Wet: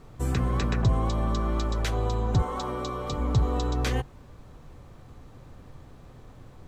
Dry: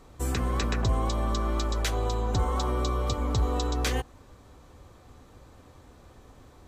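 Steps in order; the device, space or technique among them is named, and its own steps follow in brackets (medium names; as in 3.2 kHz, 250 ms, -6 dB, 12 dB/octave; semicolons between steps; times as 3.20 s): 2.42–3.13 s: high-pass 300 Hz 6 dB/octave; car interior (peaking EQ 140 Hz +9 dB 0.85 oct; treble shelf 4.6 kHz -7 dB; brown noise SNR 22 dB)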